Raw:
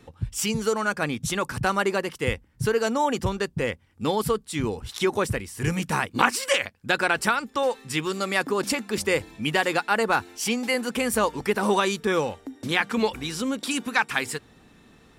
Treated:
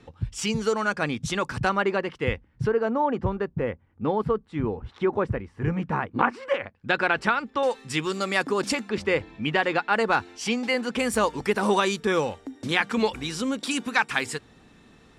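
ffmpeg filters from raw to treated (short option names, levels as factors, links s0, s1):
-af "asetnsamples=n=441:p=0,asendcmd='1.69 lowpass f 3000;2.67 lowpass f 1400;6.75 lowpass f 3300;7.63 lowpass f 8200;8.89 lowpass f 3200;9.93 lowpass f 5300;10.99 lowpass f 9100',lowpass=6100"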